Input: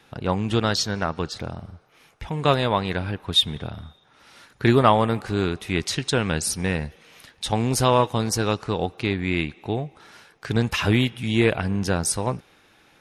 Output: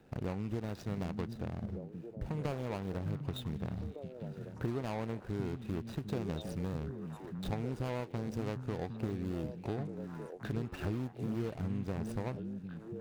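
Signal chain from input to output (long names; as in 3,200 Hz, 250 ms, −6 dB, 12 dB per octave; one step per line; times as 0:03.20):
running median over 41 samples
downward compressor 6 to 1, threshold −35 dBFS, peak gain reduction 20 dB
on a send: echo through a band-pass that steps 753 ms, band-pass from 170 Hz, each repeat 1.4 octaves, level −2.5 dB
on the sum: de-essing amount 95%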